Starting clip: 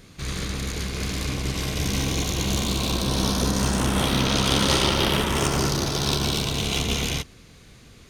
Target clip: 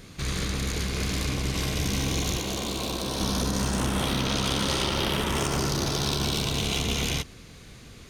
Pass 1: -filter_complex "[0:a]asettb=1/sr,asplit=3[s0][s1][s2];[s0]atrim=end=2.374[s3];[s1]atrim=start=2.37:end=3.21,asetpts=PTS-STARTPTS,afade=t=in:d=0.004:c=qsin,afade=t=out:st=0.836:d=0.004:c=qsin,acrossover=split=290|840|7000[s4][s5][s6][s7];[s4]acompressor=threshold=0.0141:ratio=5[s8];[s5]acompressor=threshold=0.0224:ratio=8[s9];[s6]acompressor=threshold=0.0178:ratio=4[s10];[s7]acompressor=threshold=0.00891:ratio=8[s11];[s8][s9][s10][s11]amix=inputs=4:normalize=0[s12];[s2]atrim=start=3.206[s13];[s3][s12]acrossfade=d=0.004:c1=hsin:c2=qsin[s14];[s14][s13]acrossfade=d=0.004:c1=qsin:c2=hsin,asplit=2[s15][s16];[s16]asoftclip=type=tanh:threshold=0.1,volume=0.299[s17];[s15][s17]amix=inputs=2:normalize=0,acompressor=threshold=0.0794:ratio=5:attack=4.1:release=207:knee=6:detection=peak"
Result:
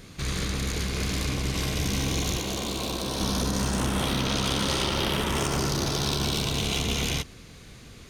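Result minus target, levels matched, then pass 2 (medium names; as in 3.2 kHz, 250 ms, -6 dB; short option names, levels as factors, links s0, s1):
saturation: distortion +9 dB
-filter_complex "[0:a]asettb=1/sr,asplit=3[s0][s1][s2];[s0]atrim=end=2.374[s3];[s1]atrim=start=2.37:end=3.21,asetpts=PTS-STARTPTS,afade=t=in:d=0.004:c=qsin,afade=t=out:st=0.836:d=0.004:c=qsin,acrossover=split=290|840|7000[s4][s5][s6][s7];[s4]acompressor=threshold=0.0141:ratio=5[s8];[s5]acompressor=threshold=0.0224:ratio=8[s9];[s6]acompressor=threshold=0.0178:ratio=4[s10];[s7]acompressor=threshold=0.00891:ratio=8[s11];[s8][s9][s10][s11]amix=inputs=4:normalize=0[s12];[s2]atrim=start=3.206[s13];[s3][s12]acrossfade=d=0.004:c1=hsin:c2=qsin[s14];[s14][s13]acrossfade=d=0.004:c1=qsin:c2=hsin,asplit=2[s15][s16];[s16]asoftclip=type=tanh:threshold=0.251,volume=0.299[s17];[s15][s17]amix=inputs=2:normalize=0,acompressor=threshold=0.0794:ratio=5:attack=4.1:release=207:knee=6:detection=peak"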